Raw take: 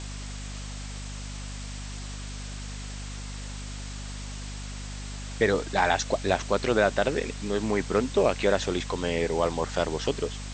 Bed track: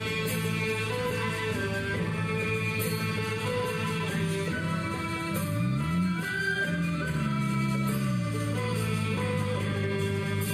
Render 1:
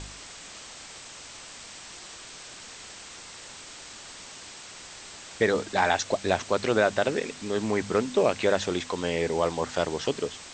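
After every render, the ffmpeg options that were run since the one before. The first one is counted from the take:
-af "bandreject=f=50:t=h:w=4,bandreject=f=100:t=h:w=4,bandreject=f=150:t=h:w=4,bandreject=f=200:t=h:w=4,bandreject=f=250:t=h:w=4"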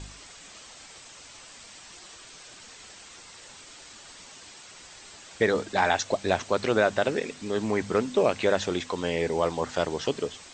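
-af "afftdn=nr=6:nf=-45"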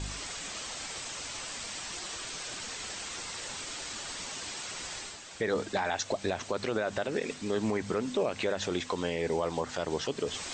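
-af "areverse,acompressor=mode=upward:threshold=-30dB:ratio=2.5,areverse,alimiter=limit=-19.5dB:level=0:latency=1:release=99"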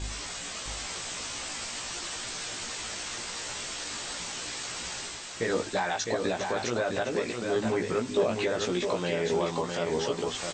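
-filter_complex "[0:a]asplit=2[a][b];[b]adelay=17,volume=-3dB[c];[a][c]amix=inputs=2:normalize=0,aecho=1:1:658:0.562"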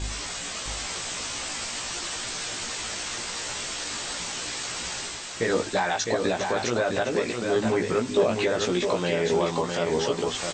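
-af "volume=4dB"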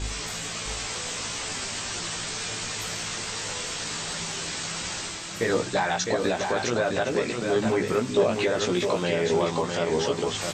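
-filter_complex "[1:a]volume=-13.5dB[a];[0:a][a]amix=inputs=2:normalize=0"

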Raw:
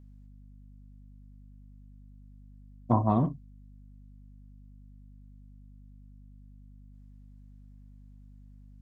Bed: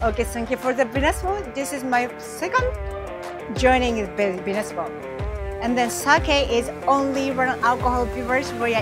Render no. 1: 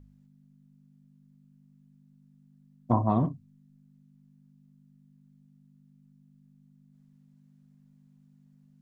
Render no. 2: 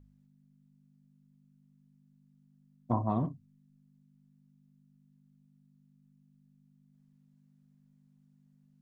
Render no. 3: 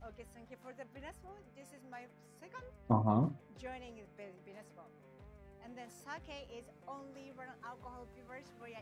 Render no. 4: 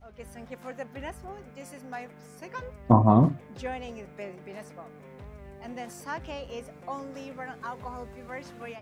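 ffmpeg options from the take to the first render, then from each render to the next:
-af "bandreject=f=50:t=h:w=4,bandreject=f=100:t=h:w=4"
-af "volume=-5.5dB"
-filter_complex "[1:a]volume=-30.5dB[a];[0:a][a]amix=inputs=2:normalize=0"
-filter_complex "[0:a]acrossover=split=1700[a][b];[b]alimiter=level_in=26dB:limit=-24dB:level=0:latency=1:release=125,volume=-26dB[c];[a][c]amix=inputs=2:normalize=0,dynaudnorm=f=130:g=3:m=12.5dB"

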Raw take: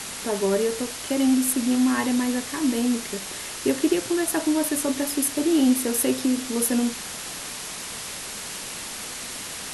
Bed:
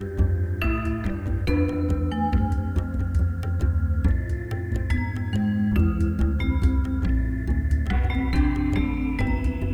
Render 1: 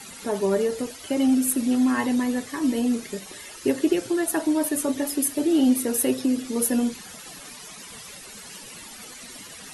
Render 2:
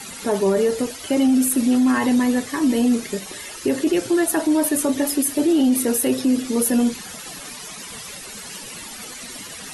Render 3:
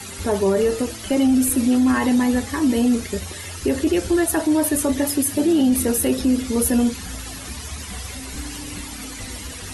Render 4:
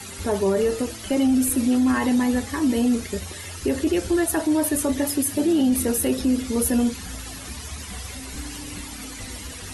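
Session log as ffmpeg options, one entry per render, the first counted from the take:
-af "afftdn=nr=14:nf=-35"
-af "alimiter=limit=-17dB:level=0:latency=1:release=12,acontrast=52"
-filter_complex "[1:a]volume=-12.5dB[a];[0:a][a]amix=inputs=2:normalize=0"
-af "volume=-2.5dB"

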